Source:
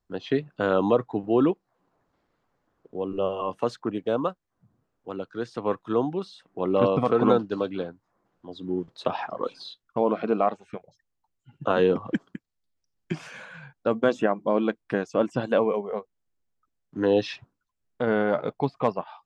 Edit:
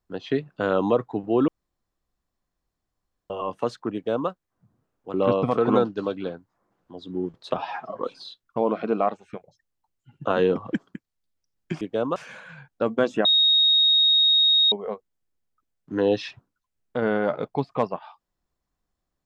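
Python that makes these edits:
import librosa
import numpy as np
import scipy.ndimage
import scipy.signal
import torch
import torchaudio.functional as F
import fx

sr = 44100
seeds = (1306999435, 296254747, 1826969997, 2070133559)

y = fx.edit(x, sr, fx.room_tone_fill(start_s=1.48, length_s=1.82),
    fx.duplicate(start_s=3.94, length_s=0.35, to_s=13.21),
    fx.cut(start_s=5.14, length_s=1.54),
    fx.stretch_span(start_s=9.11, length_s=0.28, factor=1.5),
    fx.bleep(start_s=14.3, length_s=1.47, hz=3750.0, db=-15.0), tone=tone)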